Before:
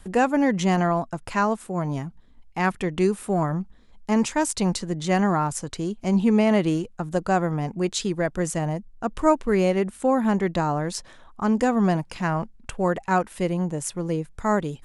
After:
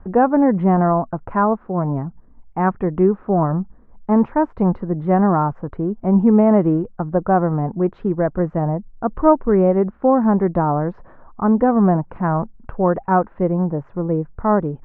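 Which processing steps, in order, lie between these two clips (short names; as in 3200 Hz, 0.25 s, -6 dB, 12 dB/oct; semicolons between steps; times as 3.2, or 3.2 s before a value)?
LPF 1300 Hz 24 dB/oct; gain +6 dB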